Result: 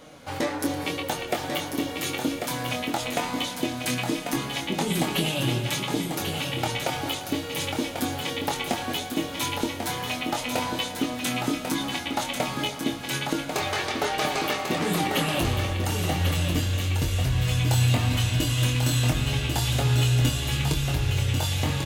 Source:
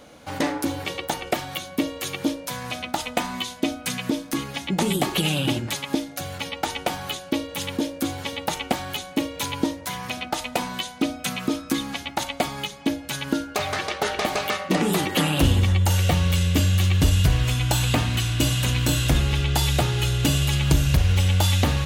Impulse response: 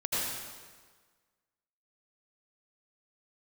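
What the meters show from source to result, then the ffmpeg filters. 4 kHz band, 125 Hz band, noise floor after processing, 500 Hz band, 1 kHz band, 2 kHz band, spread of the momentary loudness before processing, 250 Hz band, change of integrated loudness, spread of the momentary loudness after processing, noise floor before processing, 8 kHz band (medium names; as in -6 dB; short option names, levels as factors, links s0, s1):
-1.5 dB, -3.0 dB, -35 dBFS, -1.5 dB, -1.0 dB, -1.0 dB, 9 LU, -3.0 dB, -2.5 dB, 6 LU, -40 dBFS, -2.0 dB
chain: -filter_complex "[0:a]acompressor=threshold=0.0794:ratio=6,flanger=delay=6.3:depth=2.3:regen=43:speed=1.2:shape=sinusoidal,asplit=2[s0][s1];[s1]adelay=24,volume=0.531[s2];[s0][s2]amix=inputs=2:normalize=0,aecho=1:1:1093:0.501,asplit=2[s3][s4];[1:a]atrim=start_sample=2205,adelay=113[s5];[s4][s5]afir=irnorm=-1:irlink=0,volume=0.133[s6];[s3][s6]amix=inputs=2:normalize=0,volume=1.41"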